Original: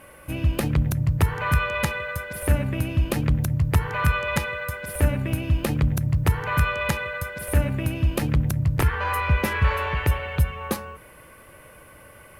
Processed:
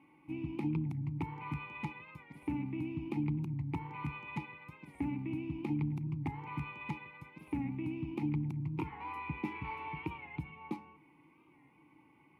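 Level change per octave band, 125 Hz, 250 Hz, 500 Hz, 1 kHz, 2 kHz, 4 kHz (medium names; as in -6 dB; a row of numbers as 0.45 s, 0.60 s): -16.5 dB, -7.5 dB, -19.0 dB, -15.0 dB, -19.5 dB, -22.5 dB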